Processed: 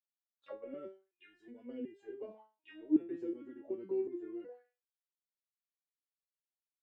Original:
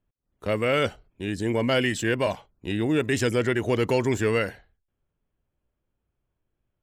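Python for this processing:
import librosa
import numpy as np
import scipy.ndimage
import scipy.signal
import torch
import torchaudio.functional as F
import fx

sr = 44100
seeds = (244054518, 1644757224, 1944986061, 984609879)

y = fx.spec_box(x, sr, start_s=0.87, length_s=0.78, low_hz=450.0, high_hz=1400.0, gain_db=-13)
y = fx.auto_wah(y, sr, base_hz=310.0, top_hz=4200.0, q=6.9, full_db=-20.0, direction='down')
y = fx.resonator_held(y, sr, hz=2.7, low_hz=170.0, high_hz=400.0)
y = y * librosa.db_to_amplitude(6.0)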